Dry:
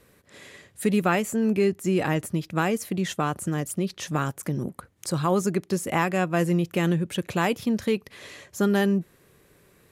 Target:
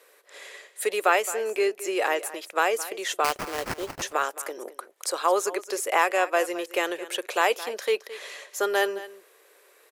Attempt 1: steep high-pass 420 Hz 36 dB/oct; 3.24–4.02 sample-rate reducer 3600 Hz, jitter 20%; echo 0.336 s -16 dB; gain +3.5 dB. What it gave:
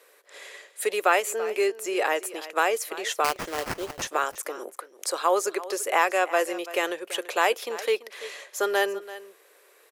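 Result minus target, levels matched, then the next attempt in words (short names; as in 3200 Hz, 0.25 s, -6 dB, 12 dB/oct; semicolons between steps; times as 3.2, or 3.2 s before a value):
echo 0.119 s late
steep high-pass 420 Hz 36 dB/oct; 3.24–4.02 sample-rate reducer 3600 Hz, jitter 20%; echo 0.217 s -16 dB; gain +3.5 dB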